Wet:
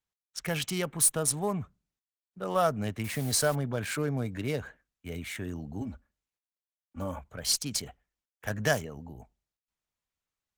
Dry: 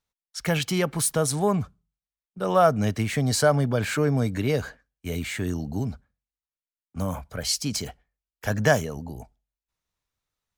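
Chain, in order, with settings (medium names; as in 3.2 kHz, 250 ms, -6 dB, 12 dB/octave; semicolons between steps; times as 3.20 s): local Wiener filter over 9 samples; treble shelf 2.6 kHz +11.5 dB; 3.04–3.55 s: word length cut 6-bit, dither triangular; 5.81–7.19 s: comb 3.5 ms, depth 91%; Chebyshev shaper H 8 -34 dB, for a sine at -0.5 dBFS; trim -8 dB; Opus 24 kbps 48 kHz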